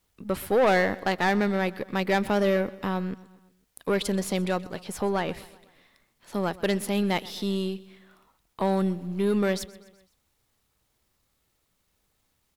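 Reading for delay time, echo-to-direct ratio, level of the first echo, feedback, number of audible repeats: 126 ms, -19.0 dB, -20.5 dB, 55%, 3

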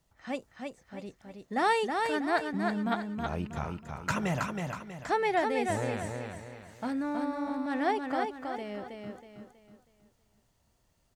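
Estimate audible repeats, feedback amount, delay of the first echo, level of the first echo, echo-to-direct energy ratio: 4, 38%, 321 ms, -4.5 dB, -4.0 dB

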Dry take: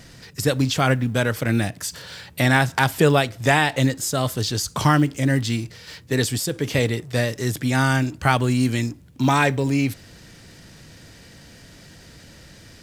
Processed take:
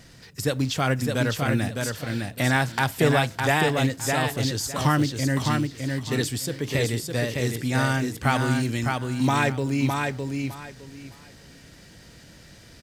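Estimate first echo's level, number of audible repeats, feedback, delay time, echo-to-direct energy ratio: -4.0 dB, 3, 21%, 609 ms, -4.0 dB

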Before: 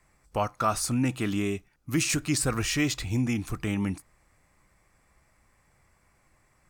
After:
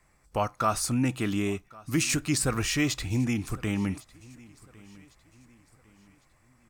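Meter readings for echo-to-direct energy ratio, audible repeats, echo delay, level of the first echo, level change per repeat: -22.5 dB, 2, 1104 ms, -23.0 dB, -8.0 dB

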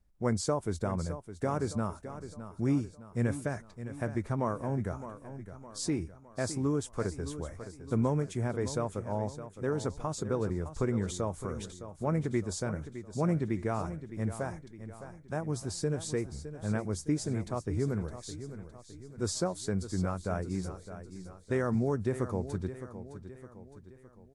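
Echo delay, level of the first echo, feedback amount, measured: 612 ms, -12.0 dB, 48%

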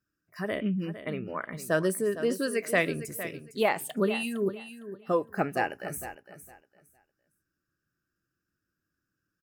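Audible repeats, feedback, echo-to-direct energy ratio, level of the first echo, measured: 2, 21%, -12.5 dB, -12.5 dB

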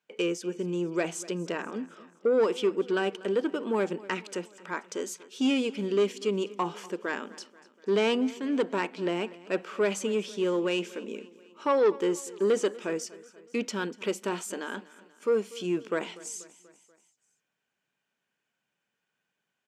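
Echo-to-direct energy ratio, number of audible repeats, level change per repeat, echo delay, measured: -18.5 dB, 3, -5.0 dB, 242 ms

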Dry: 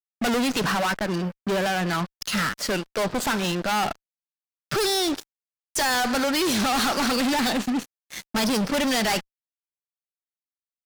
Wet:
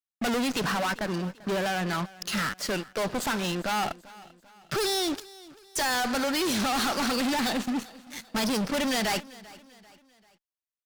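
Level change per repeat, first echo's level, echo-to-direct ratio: -7.0 dB, -20.5 dB, -19.5 dB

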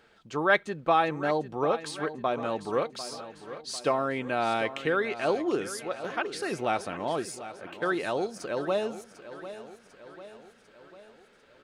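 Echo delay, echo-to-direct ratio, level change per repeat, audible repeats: 747 ms, -12.0 dB, -5.5 dB, 5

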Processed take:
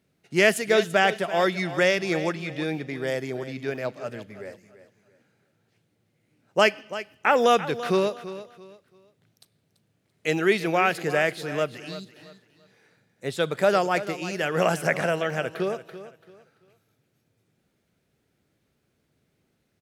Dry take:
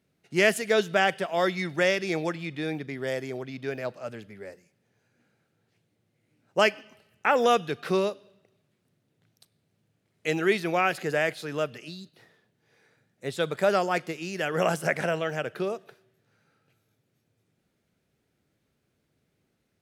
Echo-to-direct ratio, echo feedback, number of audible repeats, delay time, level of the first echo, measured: -13.5 dB, 29%, 2, 337 ms, -14.0 dB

